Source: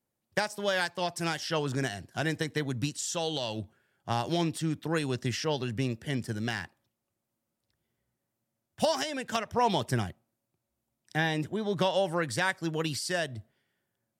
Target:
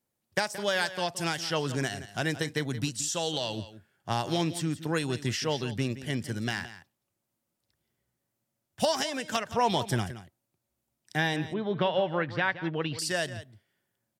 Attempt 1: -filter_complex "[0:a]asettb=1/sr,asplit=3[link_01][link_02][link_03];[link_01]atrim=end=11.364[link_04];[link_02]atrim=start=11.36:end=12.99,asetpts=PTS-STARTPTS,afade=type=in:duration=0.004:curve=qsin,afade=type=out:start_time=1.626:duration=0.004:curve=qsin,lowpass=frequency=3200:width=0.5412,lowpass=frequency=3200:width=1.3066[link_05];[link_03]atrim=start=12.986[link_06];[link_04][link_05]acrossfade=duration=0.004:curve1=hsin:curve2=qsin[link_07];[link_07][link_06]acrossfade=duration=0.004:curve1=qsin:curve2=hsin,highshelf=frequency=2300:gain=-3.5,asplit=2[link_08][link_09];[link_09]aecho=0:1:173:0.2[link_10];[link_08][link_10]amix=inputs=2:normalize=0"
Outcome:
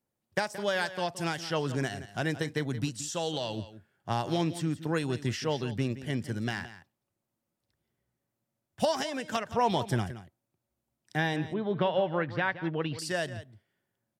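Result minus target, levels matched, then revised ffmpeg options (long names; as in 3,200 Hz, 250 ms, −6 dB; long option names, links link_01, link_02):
4,000 Hz band −3.5 dB
-filter_complex "[0:a]asettb=1/sr,asplit=3[link_01][link_02][link_03];[link_01]atrim=end=11.364[link_04];[link_02]atrim=start=11.36:end=12.99,asetpts=PTS-STARTPTS,afade=type=in:duration=0.004:curve=qsin,afade=type=out:start_time=1.626:duration=0.004:curve=qsin,lowpass=frequency=3200:width=0.5412,lowpass=frequency=3200:width=1.3066[link_05];[link_03]atrim=start=12.986[link_06];[link_04][link_05]acrossfade=duration=0.004:curve1=hsin:curve2=qsin[link_07];[link_07][link_06]acrossfade=duration=0.004:curve1=qsin:curve2=hsin,highshelf=frequency=2300:gain=3,asplit=2[link_08][link_09];[link_09]aecho=0:1:173:0.2[link_10];[link_08][link_10]amix=inputs=2:normalize=0"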